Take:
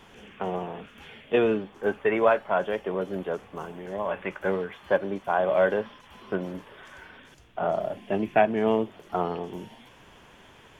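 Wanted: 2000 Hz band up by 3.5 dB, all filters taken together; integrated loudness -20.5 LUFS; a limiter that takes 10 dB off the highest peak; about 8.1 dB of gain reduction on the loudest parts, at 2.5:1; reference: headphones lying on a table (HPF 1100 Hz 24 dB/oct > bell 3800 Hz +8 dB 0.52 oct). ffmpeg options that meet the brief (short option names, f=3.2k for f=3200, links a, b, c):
-af "equalizer=f=2k:t=o:g=4.5,acompressor=threshold=-27dB:ratio=2.5,alimiter=limit=-22dB:level=0:latency=1,highpass=f=1.1k:w=0.5412,highpass=f=1.1k:w=1.3066,equalizer=f=3.8k:t=o:w=0.52:g=8,volume=21.5dB"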